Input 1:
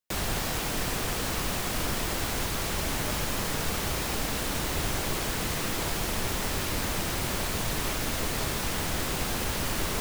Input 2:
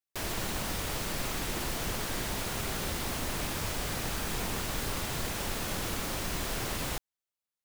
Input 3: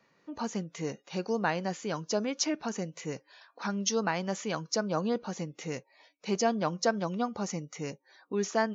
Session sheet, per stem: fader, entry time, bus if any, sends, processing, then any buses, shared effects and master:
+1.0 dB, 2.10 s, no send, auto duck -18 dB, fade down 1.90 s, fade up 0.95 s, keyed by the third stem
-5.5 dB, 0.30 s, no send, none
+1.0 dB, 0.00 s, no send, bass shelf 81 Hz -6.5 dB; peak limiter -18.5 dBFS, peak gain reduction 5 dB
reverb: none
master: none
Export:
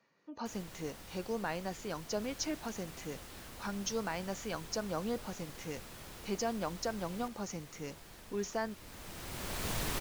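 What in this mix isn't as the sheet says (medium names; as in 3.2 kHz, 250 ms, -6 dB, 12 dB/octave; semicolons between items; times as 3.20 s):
stem 1 +1.0 dB -> -6.0 dB; stem 2 -5.5 dB -> -17.5 dB; stem 3 +1.0 dB -> -6.0 dB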